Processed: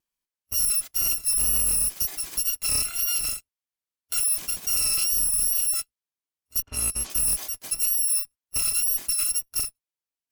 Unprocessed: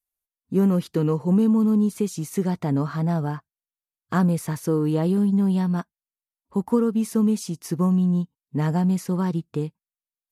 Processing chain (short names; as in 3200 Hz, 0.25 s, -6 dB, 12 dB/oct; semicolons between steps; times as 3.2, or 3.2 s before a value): FFT order left unsorted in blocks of 256 samples; wow and flutter 46 cents; limiter -15.5 dBFS, peak gain reduction 7 dB; added harmonics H 4 -22 dB, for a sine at -8.5 dBFS; 6.62–7.1 low-pass opened by the level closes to 1400 Hz, open at -19 dBFS